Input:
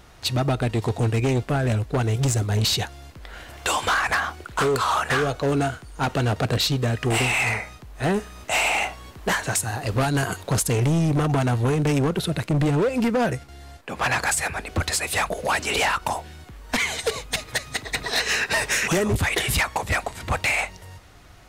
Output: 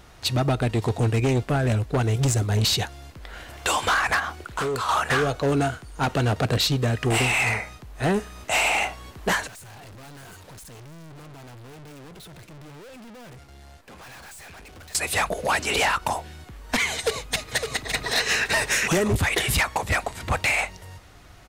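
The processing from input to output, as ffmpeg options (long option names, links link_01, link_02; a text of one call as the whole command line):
ffmpeg -i in.wav -filter_complex "[0:a]asettb=1/sr,asplit=3[link_01][link_02][link_03];[link_01]atrim=end=4.194[link_04];[link_02]atrim=start=4.19:end=4.89,asetpts=PTS-STARTPTS,afade=type=in:duration=0.004:curve=qsin,afade=type=out:start_time=0.696:duration=0.004:curve=qsin,acompressor=threshold=-24dB:ratio=6:attack=3.2:release=140:knee=1:detection=peak[link_05];[link_03]atrim=start=4.886[link_06];[link_04][link_05]acrossfade=duration=0.004:curve1=hsin:curve2=qsin[link_07];[link_07][link_06]acrossfade=duration=0.004:curve1=qsin:curve2=hsin,asettb=1/sr,asplit=3[link_08][link_09][link_10];[link_08]atrim=end=9.474[link_11];[link_09]atrim=start=9.47:end=14.95,asetpts=PTS-STARTPTS,afade=type=in:duration=0.004:curve=qsin,afade=type=out:start_time=5.476:duration=0.004:curve=qsin,aeval=exprs='(tanh(141*val(0)+0.2)-tanh(0.2))/141':channel_layout=same[link_12];[link_10]atrim=start=14.946[link_13];[link_11][link_12]acrossfade=duration=0.004:curve1=hsin:curve2=qsin[link_14];[link_14][link_13]acrossfade=duration=0.004:curve1=qsin:curve2=hsin,asplit=2[link_15][link_16];[link_16]afade=type=in:start_time=16.95:duration=0.01,afade=type=out:start_time=18.06:duration=0.01,aecho=0:1:560|1120|1680:0.473151|0.0946303|0.0189261[link_17];[link_15][link_17]amix=inputs=2:normalize=0" out.wav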